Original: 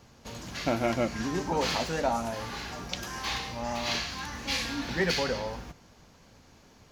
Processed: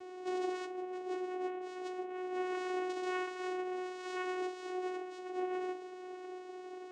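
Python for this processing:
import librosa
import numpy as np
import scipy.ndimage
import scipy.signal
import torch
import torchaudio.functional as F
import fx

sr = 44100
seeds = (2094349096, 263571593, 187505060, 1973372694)

p1 = fx.over_compress(x, sr, threshold_db=-41.0, ratio=-1.0)
p2 = fx.graphic_eq(p1, sr, hz=(250, 2000, 4000), db=(9, -4, -10))
p3 = 10.0 ** (-30.5 / 20.0) * np.tanh(p2 / 10.0 ** (-30.5 / 20.0))
p4 = fx.low_shelf(p3, sr, hz=430.0, db=-4.5)
p5 = p4 + fx.echo_single(p4, sr, ms=696, db=-14.0, dry=0)
p6 = fx.rev_fdn(p5, sr, rt60_s=0.51, lf_ratio=0.75, hf_ratio=0.6, size_ms=28.0, drr_db=4.0)
p7 = fx.vocoder(p6, sr, bands=4, carrier='saw', carrier_hz=367.0)
y = p7 * 10.0 ** (1.5 / 20.0)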